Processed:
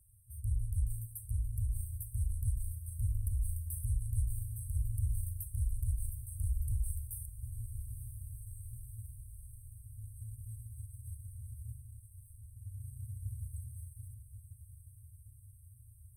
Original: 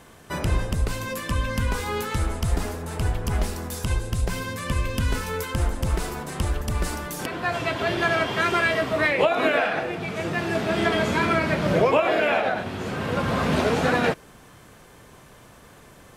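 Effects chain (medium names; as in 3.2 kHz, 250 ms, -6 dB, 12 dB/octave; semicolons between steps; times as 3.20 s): peak limiter -18.5 dBFS, peak gain reduction 10.5 dB; Chebyshev shaper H 7 -29 dB, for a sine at -18.5 dBFS; FFT band-reject 120–8100 Hz; on a send: echo that smears into a reverb 986 ms, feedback 66%, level -11 dB; on the sum: trim -5 dB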